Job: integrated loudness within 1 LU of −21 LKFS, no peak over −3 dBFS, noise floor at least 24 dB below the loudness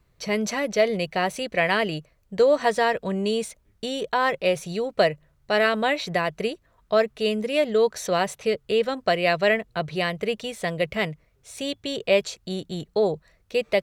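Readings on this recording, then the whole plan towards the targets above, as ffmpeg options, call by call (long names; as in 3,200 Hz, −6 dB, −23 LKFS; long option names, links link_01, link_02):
integrated loudness −24.5 LKFS; sample peak −7.5 dBFS; target loudness −21.0 LKFS
→ -af "volume=3.5dB"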